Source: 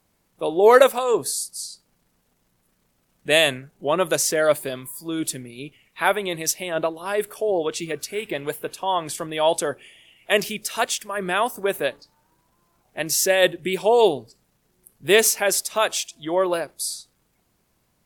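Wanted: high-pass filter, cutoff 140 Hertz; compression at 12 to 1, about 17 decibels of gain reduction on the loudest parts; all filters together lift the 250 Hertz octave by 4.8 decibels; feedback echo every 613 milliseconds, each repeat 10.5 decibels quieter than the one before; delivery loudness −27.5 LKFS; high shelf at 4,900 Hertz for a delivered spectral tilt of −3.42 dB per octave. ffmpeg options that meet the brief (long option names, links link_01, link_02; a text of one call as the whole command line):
ffmpeg -i in.wav -af "highpass=140,equalizer=frequency=250:width_type=o:gain=8,highshelf=frequency=4900:gain=-8.5,acompressor=threshold=-24dB:ratio=12,aecho=1:1:613|1226|1839:0.299|0.0896|0.0269,volume=3dB" out.wav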